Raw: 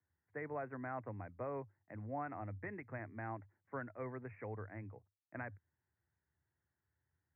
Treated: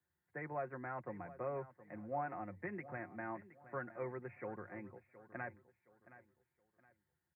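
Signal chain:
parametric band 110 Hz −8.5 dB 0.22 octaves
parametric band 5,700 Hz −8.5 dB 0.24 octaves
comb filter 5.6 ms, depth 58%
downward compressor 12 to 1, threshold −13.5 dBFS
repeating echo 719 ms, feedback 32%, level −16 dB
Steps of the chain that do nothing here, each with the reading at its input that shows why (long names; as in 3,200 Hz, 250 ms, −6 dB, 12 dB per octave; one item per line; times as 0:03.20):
parametric band 5,700 Hz: nothing at its input above 2,600 Hz
downward compressor, threshold −13.5 dBFS: peak of its input −28.5 dBFS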